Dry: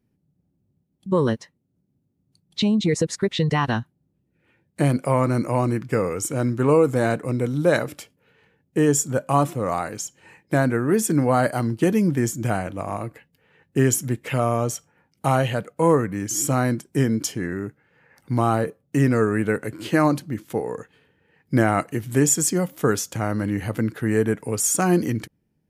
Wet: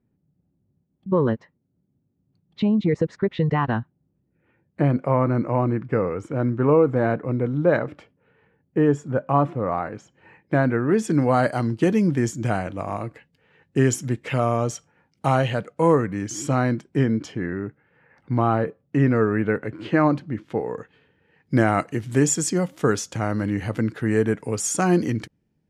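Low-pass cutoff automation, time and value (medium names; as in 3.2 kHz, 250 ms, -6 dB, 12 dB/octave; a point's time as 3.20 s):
10.05 s 1.8 kHz
10.88 s 3.4 kHz
11.25 s 6.2 kHz
15.98 s 6.2 kHz
17.32 s 2.6 kHz
20.19 s 2.6 kHz
21.67 s 6.9 kHz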